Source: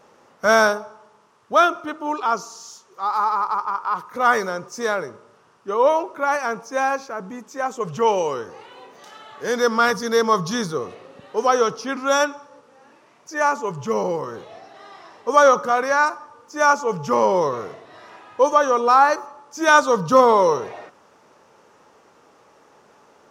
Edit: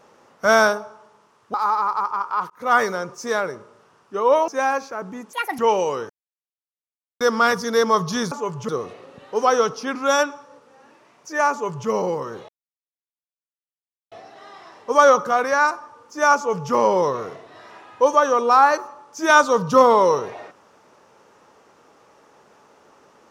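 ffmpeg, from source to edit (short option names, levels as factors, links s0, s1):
-filter_complex "[0:a]asplit=11[s0][s1][s2][s3][s4][s5][s6][s7][s8][s9][s10];[s0]atrim=end=1.542[s11];[s1]atrim=start=3.078:end=4.04,asetpts=PTS-STARTPTS,afade=t=out:st=0.958:d=0.004:c=hsin[s12];[s2]atrim=start=4.04:end=6.022,asetpts=PTS-STARTPTS,afade=t=in:d=0.27:c=qsin[s13];[s3]atrim=start=6.658:end=7.514[s14];[s4]atrim=start=7.51:end=7.97,asetpts=PTS-STARTPTS,asetrate=79380,aresample=44100[s15];[s5]atrim=start=7.966:end=8.48,asetpts=PTS-STARTPTS,afade=t=out:st=0.51:d=0.004:c=hsin[s16];[s6]atrim=start=8.48:end=9.59,asetpts=PTS-STARTPTS,volume=0[s17];[s7]atrim=start=9.59:end=10.702,asetpts=PTS-STARTPTS,afade=t=in:d=0.004:c=hsin[s18];[s8]atrim=start=13.528:end=13.902[s19];[s9]atrim=start=10.698:end=14.5,asetpts=PTS-STARTPTS,afade=t=out:st=3.798:d=0.004:c=hsin,apad=pad_dur=1.63[s20];[s10]atrim=start=14.5,asetpts=PTS-STARTPTS,afade=t=in:d=0.004:c=hsin[s21];[s12][s13]concat=n=2:v=0:a=1[s22];[s11][s22]acrossfade=d=0.004:c1=hsin:c2=hsin[s23];[s23][s14]acrossfade=d=0.004:c1=hsin:c2=hsin[s24];[s24][s15]acrossfade=d=0.004:c1=hsin:c2=hsin[s25];[s16][s17][s18]concat=n=3:v=0:a=1[s26];[s25][s26]acrossfade=d=0.004:c1=hsin:c2=hsin[s27];[s27][s19]acrossfade=d=0.004:c1=hsin:c2=hsin[s28];[s20][s21]concat=n=2:v=0:a=1[s29];[s28][s29]acrossfade=d=0.004:c1=hsin:c2=hsin"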